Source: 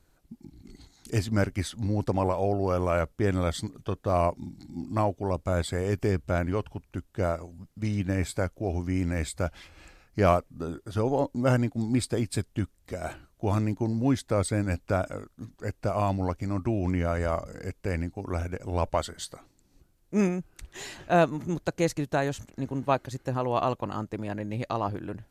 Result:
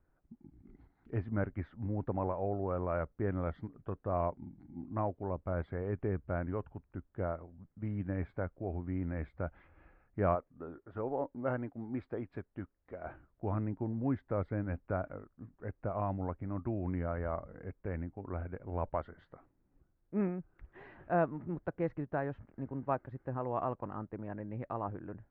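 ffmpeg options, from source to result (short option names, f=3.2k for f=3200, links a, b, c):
-filter_complex "[0:a]asettb=1/sr,asplit=3[a][b][c];[a]atrim=end=10.354[d];[b]atrim=start=10.35:end=13.06,asetpts=PTS-STARTPTS,afade=t=in:d=0.004:c=qsin,afade=t=out:st=2.706:d=0.004:c=qsin,bass=f=250:g=-8,treble=f=4k:g=2[e];[c]atrim=start=13.056[f];[d][e]acrossfade=d=0.004:c1=hsin:c2=qsin[g];[g][f]acrossfade=d=0.004:c1=qsin:c2=hsin,lowpass=f=1.8k:w=0.5412,lowpass=f=1.8k:w=1.3066,volume=-8.5dB"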